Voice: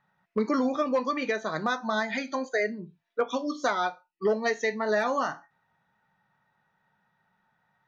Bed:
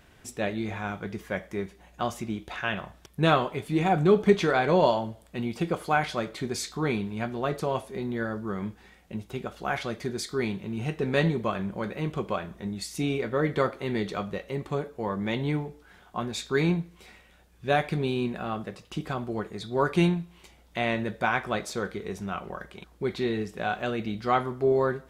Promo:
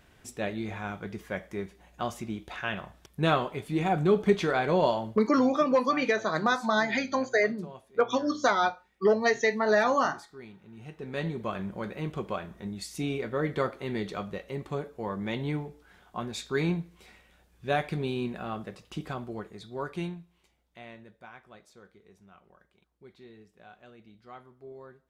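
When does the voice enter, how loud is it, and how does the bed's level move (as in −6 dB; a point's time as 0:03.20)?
4.80 s, +2.5 dB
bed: 0:05.07 −3 dB
0:05.55 −18 dB
0:10.60 −18 dB
0:11.56 −3.5 dB
0:19.05 −3.5 dB
0:21.29 −23 dB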